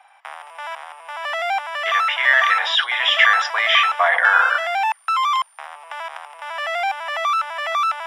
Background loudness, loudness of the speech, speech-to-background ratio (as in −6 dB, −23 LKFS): −22.5 LKFS, −16.5 LKFS, 6.0 dB